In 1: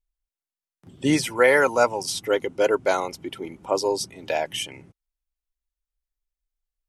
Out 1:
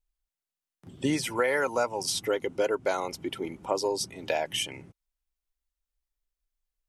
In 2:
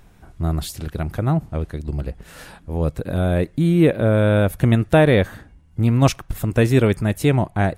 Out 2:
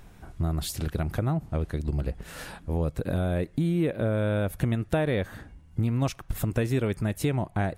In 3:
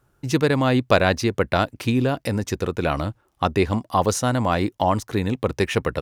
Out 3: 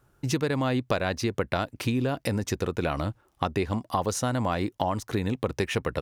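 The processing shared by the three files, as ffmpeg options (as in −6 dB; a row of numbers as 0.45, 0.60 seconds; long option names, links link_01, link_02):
-af "acompressor=threshold=-24dB:ratio=4"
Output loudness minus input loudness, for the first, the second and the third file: −6.5, −9.0, −6.5 LU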